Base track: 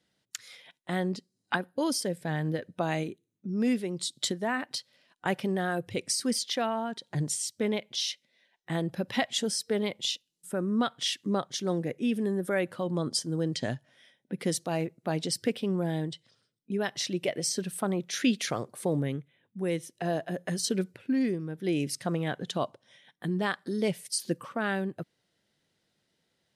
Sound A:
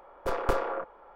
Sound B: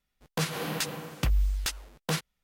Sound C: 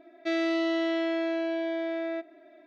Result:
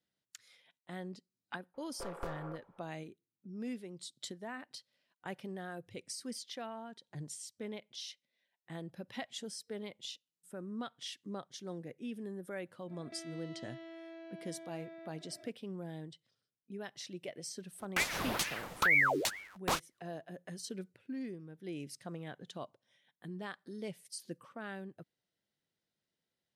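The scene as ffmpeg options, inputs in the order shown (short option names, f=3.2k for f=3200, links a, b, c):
-filter_complex "[0:a]volume=-14dB[a];[3:a]acompressor=threshold=-45dB:ratio=6:attack=3.2:release=140:knee=1:detection=peak[b];[2:a]aeval=exprs='val(0)*sin(2*PI*1300*n/s+1300*0.75/2.2*sin(2*PI*2.2*n/s))':c=same[c];[1:a]atrim=end=1.15,asetpts=PTS-STARTPTS,volume=-15dB,afade=t=in:d=0.004:c=hsin,afade=t=out:st=1.146:d=0.004:c=hsin,adelay=1740[d];[b]atrim=end=2.66,asetpts=PTS-STARTPTS,volume=-3.5dB,afade=t=in:d=0.05,afade=t=out:st=2.61:d=0.05,adelay=12870[e];[c]atrim=end=2.43,asetpts=PTS-STARTPTS,volume=-0.5dB,afade=t=in:d=0.004:c=hsin,afade=t=out:st=2.426:d=0.004:c=hsin,adelay=17590[f];[a][d][e][f]amix=inputs=4:normalize=0"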